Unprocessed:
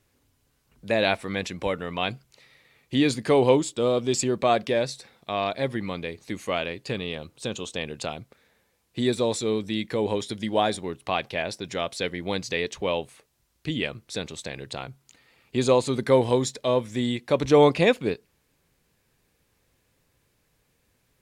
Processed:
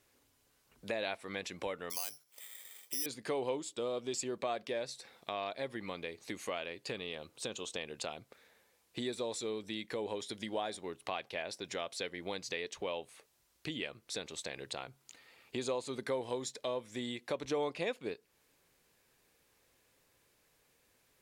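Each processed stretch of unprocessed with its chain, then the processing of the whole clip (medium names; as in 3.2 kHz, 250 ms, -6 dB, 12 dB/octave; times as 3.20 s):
1.90–3.06 s: high-pass 480 Hz 6 dB/octave + compression 1.5:1, threshold -34 dBFS + careless resampling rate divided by 8×, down filtered, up zero stuff
whole clip: tone controls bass -10 dB, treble +1 dB; compression 2.5:1, threshold -39 dBFS; trim -1 dB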